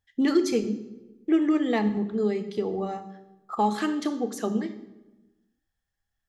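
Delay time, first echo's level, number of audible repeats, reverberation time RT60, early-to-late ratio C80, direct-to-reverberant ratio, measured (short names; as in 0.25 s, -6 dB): none, none, none, 1.1 s, 14.5 dB, 9.5 dB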